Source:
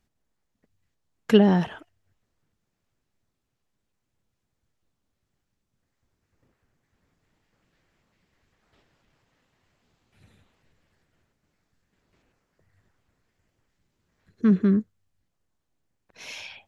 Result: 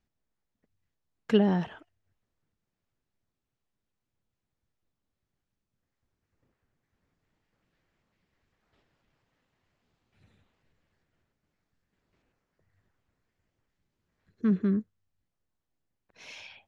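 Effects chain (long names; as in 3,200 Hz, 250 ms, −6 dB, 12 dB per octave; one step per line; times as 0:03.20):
high-frequency loss of the air 53 metres
level −6 dB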